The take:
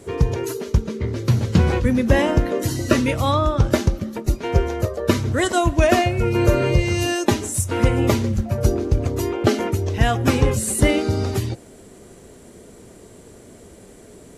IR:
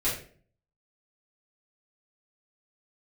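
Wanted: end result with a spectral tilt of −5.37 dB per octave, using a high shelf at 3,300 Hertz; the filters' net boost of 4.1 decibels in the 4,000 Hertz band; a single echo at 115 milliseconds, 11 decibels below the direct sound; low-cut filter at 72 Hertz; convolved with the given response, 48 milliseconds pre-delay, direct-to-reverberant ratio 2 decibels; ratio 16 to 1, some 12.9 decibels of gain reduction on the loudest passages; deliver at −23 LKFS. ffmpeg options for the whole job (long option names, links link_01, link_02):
-filter_complex "[0:a]highpass=72,highshelf=frequency=3300:gain=-4,equalizer=frequency=4000:width_type=o:gain=8.5,acompressor=threshold=-25dB:ratio=16,aecho=1:1:115:0.282,asplit=2[link_01][link_02];[1:a]atrim=start_sample=2205,adelay=48[link_03];[link_02][link_03]afir=irnorm=-1:irlink=0,volume=-11dB[link_04];[link_01][link_04]amix=inputs=2:normalize=0,volume=4dB"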